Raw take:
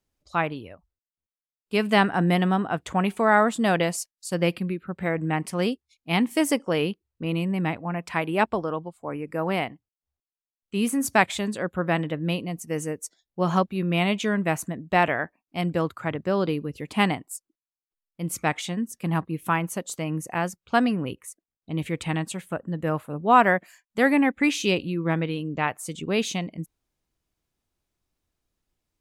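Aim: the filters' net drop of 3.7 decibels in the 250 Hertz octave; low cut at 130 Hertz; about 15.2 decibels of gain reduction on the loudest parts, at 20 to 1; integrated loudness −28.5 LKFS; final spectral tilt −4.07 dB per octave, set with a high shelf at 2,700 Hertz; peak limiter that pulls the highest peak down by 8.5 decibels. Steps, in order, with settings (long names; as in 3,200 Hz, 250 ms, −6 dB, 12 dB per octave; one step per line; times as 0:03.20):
high-pass filter 130 Hz
parametric band 250 Hz −4.5 dB
high-shelf EQ 2,700 Hz +4.5 dB
downward compressor 20 to 1, threshold −25 dBFS
level +4.5 dB
brickwall limiter −16.5 dBFS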